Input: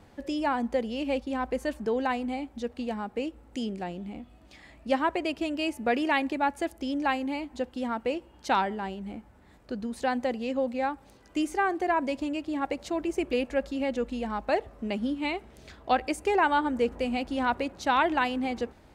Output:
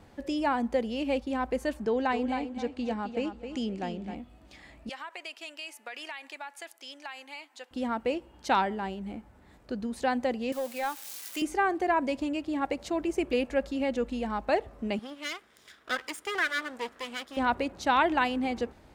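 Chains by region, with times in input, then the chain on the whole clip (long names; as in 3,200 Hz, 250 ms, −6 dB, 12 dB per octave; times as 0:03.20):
0:01.85–0:04.15: low-pass filter 7,800 Hz + repeating echo 263 ms, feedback 26%, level −9 dB
0:04.89–0:07.71: Bessel high-pass filter 1,500 Hz + downward compressor 10 to 1, threshold −35 dBFS
0:10.52–0:11.42: spike at every zero crossing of −33.5 dBFS + high-pass filter 1,200 Hz 6 dB per octave + leveller curve on the samples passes 1
0:14.99–0:17.37: lower of the sound and its delayed copy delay 0.57 ms + high-pass filter 1,200 Hz 6 dB per octave
whole clip: no processing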